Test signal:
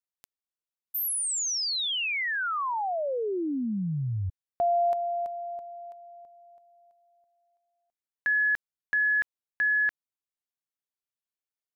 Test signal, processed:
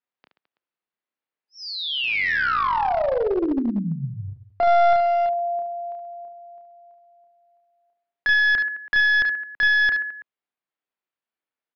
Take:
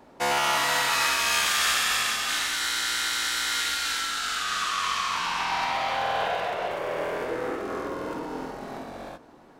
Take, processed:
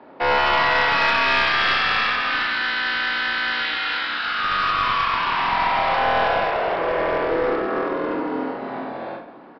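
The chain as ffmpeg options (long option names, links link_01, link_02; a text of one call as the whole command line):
ffmpeg -i in.wav -filter_complex "[0:a]highpass=frequency=59:poles=1,acrossover=split=170 3000:gain=0.2 1 0.158[link_01][link_02][link_03];[link_01][link_02][link_03]amix=inputs=3:normalize=0,aecho=1:1:30|72|130.8|213.1|328.4:0.631|0.398|0.251|0.158|0.1,aresample=11025,aeval=exprs='clip(val(0),-1,0.0531)':channel_layout=same,aresample=44100,acontrast=65" out.wav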